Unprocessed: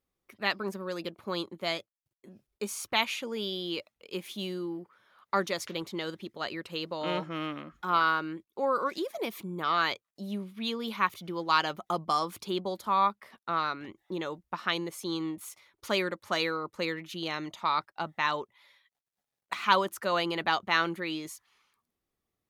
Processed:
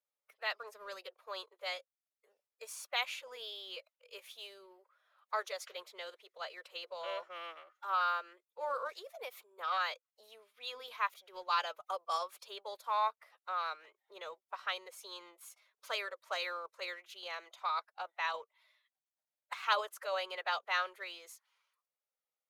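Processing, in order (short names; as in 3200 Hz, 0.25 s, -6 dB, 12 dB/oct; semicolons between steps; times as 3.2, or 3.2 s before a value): elliptic high-pass 480 Hz, stop band 80 dB; in parallel at -9 dB: crossover distortion -48.5 dBFS; on the sum: formant-preserving pitch shift +1.5 st; gain -9 dB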